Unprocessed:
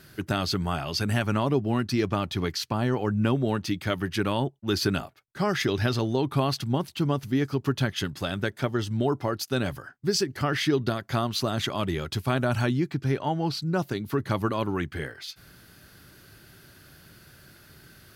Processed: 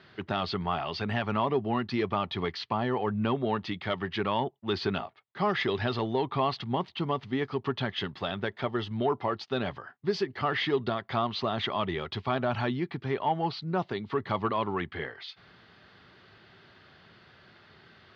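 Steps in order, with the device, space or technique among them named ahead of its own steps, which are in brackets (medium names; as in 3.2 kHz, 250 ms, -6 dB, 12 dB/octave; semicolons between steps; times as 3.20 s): overdrive pedal into a guitar cabinet (overdrive pedal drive 11 dB, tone 2.4 kHz, clips at -11.5 dBFS; cabinet simulation 85–3800 Hz, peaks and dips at 140 Hz -5 dB, 300 Hz -8 dB, 560 Hz -5 dB, 1.5 kHz -9 dB, 2.5 kHz -5 dB)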